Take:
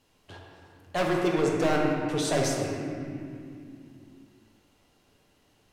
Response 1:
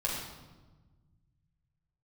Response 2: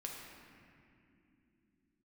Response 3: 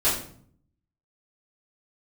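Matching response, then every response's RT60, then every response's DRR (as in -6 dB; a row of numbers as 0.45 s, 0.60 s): 2; 1.2 s, 2.9 s, 0.55 s; -4.5 dB, -1.5 dB, -11.0 dB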